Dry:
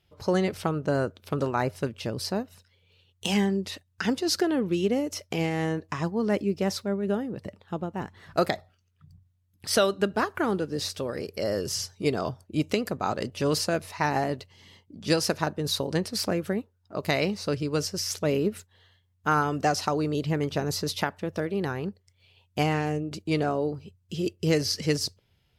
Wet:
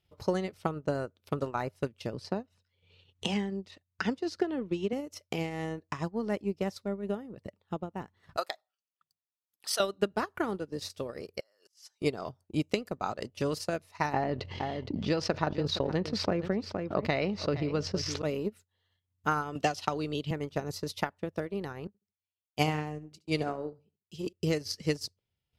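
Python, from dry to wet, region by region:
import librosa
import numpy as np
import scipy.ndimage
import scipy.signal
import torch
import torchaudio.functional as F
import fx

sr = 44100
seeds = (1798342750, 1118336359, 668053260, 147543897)

y = fx.chain(x, sr, fx.air_absorb(metres=68.0),
    fx.band_squash(depth_pct=40), at=(2.13, 4.93))
y = fx.chain(y, sr, fx.highpass(hz=810.0, slope=12),
    fx.peak_eq(hz=2100.0, db=-6.5, octaves=0.42), at=(8.37, 9.8))
y = fx.chain(y, sr, fx.over_compress(threshold_db=-40.0, ratio=-1.0),
    fx.highpass(hz=960.0, slope=12),
    fx.auto_swell(attack_ms=577.0), at=(11.4, 12.02))
y = fx.chain(y, sr, fx.air_absorb(metres=200.0),
    fx.echo_single(ms=466, db=-16.0),
    fx.env_flatten(amount_pct=70), at=(14.13, 18.22))
y = fx.chain(y, sr, fx.peak_eq(hz=3200.0, db=10.5, octaves=0.69),
    fx.band_squash(depth_pct=40), at=(19.55, 20.31))
y = fx.chain(y, sr, fx.echo_feedback(ms=72, feedback_pct=36, wet_db=-13.5),
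    fx.band_widen(depth_pct=100), at=(21.87, 24.33))
y = fx.notch(y, sr, hz=1600.0, q=18.0)
y = fx.transient(y, sr, attack_db=6, sustain_db=-10)
y = y * 10.0 ** (-8.0 / 20.0)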